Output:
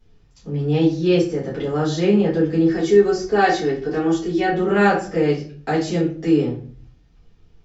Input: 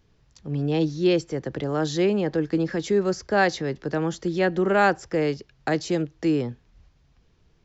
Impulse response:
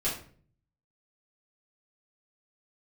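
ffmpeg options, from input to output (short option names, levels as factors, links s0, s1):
-filter_complex "[0:a]asettb=1/sr,asplit=3[s0][s1][s2];[s0]atrim=end=2.684[s3];[s1]atrim=start=2.68:end=4.51,asetpts=PTS-STARTPTS,afade=t=in:d=0.004:c=qsin,afade=t=out:st=1.826:d=0.004:c=qsin,aecho=1:1:2.7:0.53,atrim=end_sample=80703[s4];[s2]atrim=start=4.506[s5];[s3][s4]acrossfade=d=0.004:c1=hsin:c2=qsin[s6];[s6][s5]acrossfade=d=0.004:c1=qsin:c2=hsin[s7];[1:a]atrim=start_sample=2205,asetrate=48510,aresample=44100[s8];[s7][s8]afir=irnorm=-1:irlink=0,volume=0.668"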